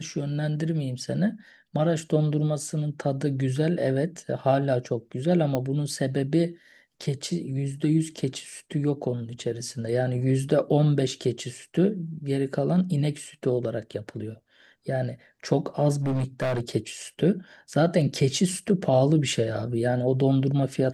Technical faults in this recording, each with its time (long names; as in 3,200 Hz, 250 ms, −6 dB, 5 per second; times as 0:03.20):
0:05.55: click −13 dBFS
0:16.02–0:16.60: clipping −22.5 dBFS